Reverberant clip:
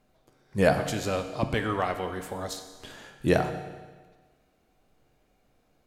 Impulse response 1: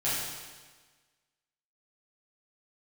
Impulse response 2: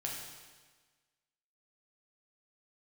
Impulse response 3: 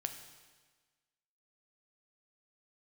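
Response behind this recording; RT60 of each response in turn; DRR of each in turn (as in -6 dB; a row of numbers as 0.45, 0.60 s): 3; 1.4, 1.4, 1.4 s; -11.0, -2.5, 6.5 dB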